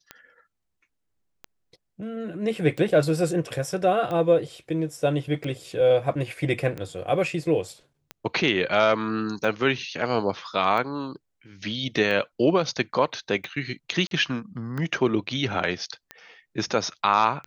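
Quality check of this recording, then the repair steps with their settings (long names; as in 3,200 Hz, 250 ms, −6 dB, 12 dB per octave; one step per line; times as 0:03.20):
scratch tick 45 rpm −20 dBFS
0:14.07–0:14.11: drop-out 42 ms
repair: click removal
repair the gap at 0:14.07, 42 ms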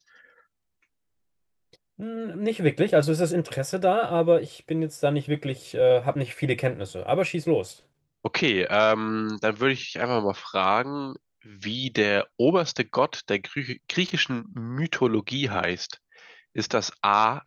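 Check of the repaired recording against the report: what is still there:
none of them is left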